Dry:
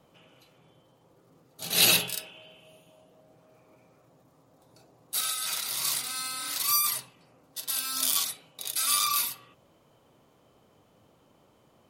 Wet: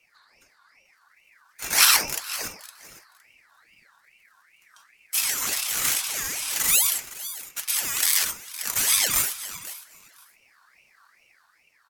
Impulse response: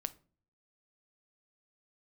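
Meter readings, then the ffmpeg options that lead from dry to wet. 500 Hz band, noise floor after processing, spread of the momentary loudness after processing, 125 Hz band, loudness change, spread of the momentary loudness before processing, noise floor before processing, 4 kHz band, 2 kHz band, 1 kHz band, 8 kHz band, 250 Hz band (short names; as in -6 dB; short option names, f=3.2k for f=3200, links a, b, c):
+0.5 dB, -63 dBFS, 16 LU, -1.5 dB, +4.0 dB, 15 LU, -63 dBFS, +2.5 dB, +7.5 dB, +2.0 dB, +6.0 dB, -1.0 dB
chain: -filter_complex "[0:a]firequalizer=gain_entry='entry(260,0);entry(840,-28);entry(2400,0)':delay=0.05:min_phase=1,dynaudnorm=f=170:g=9:m=4.5dB,aecho=1:1:512|1024:0.178|0.0267,asplit=2[a][b];[1:a]atrim=start_sample=2205,asetrate=31311,aresample=44100[c];[b][c]afir=irnorm=-1:irlink=0,volume=-0.5dB[d];[a][d]amix=inputs=2:normalize=0,aeval=exprs='val(0)*sin(2*PI*1900*n/s+1900*0.35/2.4*sin(2*PI*2.4*n/s))':c=same,volume=-2dB"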